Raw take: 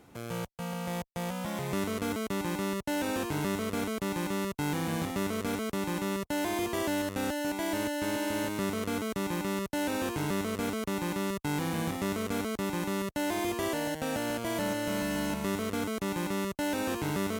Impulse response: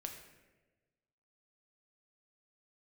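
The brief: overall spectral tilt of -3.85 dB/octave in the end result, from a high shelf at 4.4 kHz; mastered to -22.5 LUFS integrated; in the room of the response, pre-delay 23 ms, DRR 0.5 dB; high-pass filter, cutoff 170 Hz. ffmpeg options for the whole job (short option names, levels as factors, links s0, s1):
-filter_complex "[0:a]highpass=170,highshelf=f=4400:g=5.5,asplit=2[s0][s1];[1:a]atrim=start_sample=2205,adelay=23[s2];[s1][s2]afir=irnorm=-1:irlink=0,volume=1.26[s3];[s0][s3]amix=inputs=2:normalize=0,volume=2.37"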